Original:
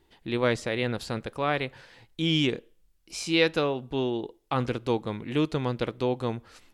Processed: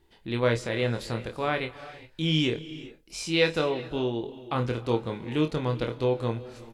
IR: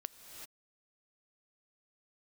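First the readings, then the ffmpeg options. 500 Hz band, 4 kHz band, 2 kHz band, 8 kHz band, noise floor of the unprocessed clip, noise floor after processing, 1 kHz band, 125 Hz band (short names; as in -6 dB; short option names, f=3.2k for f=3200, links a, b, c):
+0.5 dB, -0.5 dB, -0.5 dB, -0.5 dB, -65 dBFS, -58 dBFS, -1.0 dB, +2.0 dB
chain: -filter_complex "[0:a]lowshelf=f=140:g=3,asplit=2[a][b];[b]adelay=26,volume=-7dB[c];[a][c]amix=inputs=2:normalize=0,asplit=2[d][e];[1:a]atrim=start_sample=2205,adelay=24[f];[e][f]afir=irnorm=-1:irlink=0,volume=-6dB[g];[d][g]amix=inputs=2:normalize=0,volume=-2dB"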